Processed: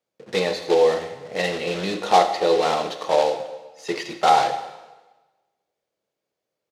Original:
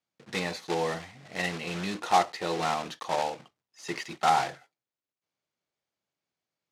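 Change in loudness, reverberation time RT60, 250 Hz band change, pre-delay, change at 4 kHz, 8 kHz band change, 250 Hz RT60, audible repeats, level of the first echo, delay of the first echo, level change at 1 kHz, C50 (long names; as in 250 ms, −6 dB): +8.5 dB, 1.2 s, +6.0 dB, 4 ms, +7.5 dB, +4.0 dB, 1.1 s, 1, −17.5 dB, 83 ms, +7.0 dB, 9.5 dB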